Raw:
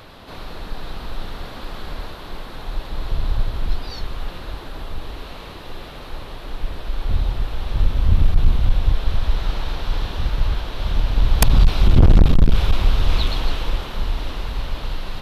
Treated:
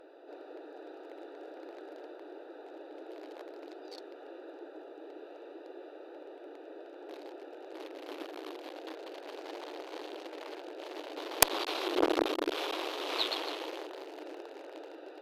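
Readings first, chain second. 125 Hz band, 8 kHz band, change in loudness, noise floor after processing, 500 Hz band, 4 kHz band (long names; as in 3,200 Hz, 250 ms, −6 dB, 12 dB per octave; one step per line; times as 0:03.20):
below −40 dB, −2.5 dB, −15.0 dB, −50 dBFS, −3.5 dB, −7.5 dB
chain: adaptive Wiener filter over 41 samples
linear-phase brick-wall high-pass 290 Hz
harmonic generator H 2 −17 dB, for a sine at −2 dBFS
level −2 dB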